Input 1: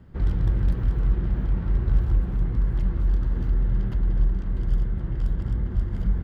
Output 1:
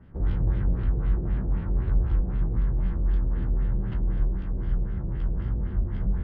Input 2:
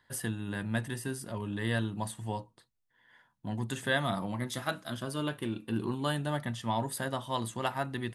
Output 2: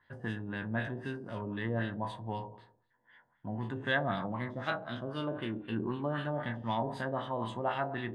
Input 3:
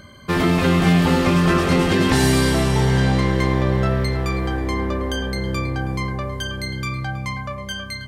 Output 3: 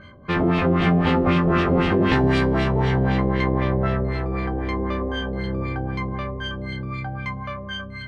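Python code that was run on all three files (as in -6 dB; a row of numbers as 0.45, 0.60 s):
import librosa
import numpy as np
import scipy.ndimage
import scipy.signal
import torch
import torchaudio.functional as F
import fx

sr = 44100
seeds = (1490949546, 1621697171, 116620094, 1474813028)

y = fx.spec_trails(x, sr, decay_s=0.53)
y = fx.echo_feedback(y, sr, ms=112, feedback_pct=34, wet_db=-15.0)
y = fx.filter_lfo_lowpass(y, sr, shape='sine', hz=3.9, low_hz=560.0, high_hz=3200.0, q=1.4)
y = y * librosa.db_to_amplitude(-3.5)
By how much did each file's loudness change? -2.0, -1.5, -2.5 LU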